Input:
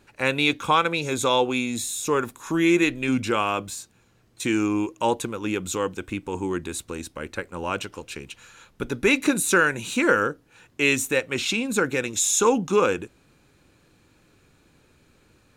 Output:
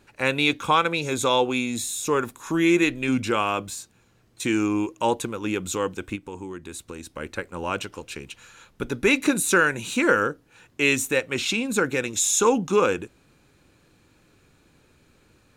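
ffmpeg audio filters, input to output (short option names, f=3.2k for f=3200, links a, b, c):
-filter_complex "[0:a]asplit=3[a][b][c];[a]afade=t=out:st=6.15:d=0.02[d];[b]acompressor=threshold=-34dB:ratio=4,afade=t=in:st=6.15:d=0.02,afade=t=out:st=7.13:d=0.02[e];[c]afade=t=in:st=7.13:d=0.02[f];[d][e][f]amix=inputs=3:normalize=0"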